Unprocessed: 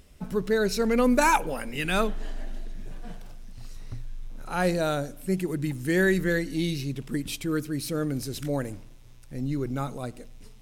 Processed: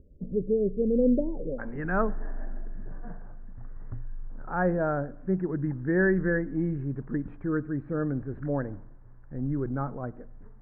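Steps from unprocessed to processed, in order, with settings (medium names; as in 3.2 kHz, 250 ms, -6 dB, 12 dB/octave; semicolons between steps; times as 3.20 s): Chebyshev low-pass 550 Hz, order 5, from 1.58 s 1.7 kHz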